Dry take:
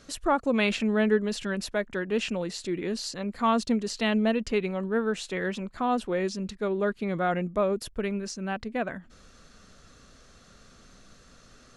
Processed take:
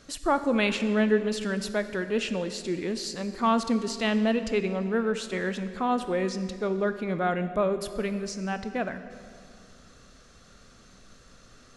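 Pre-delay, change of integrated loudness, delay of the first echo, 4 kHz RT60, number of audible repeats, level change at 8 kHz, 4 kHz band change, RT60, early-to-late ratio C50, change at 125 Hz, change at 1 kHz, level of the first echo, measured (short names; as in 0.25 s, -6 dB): 19 ms, +0.5 dB, none, 1.7 s, none, +0.5 dB, +0.5 dB, 2.3 s, 11.0 dB, +0.5 dB, +0.5 dB, none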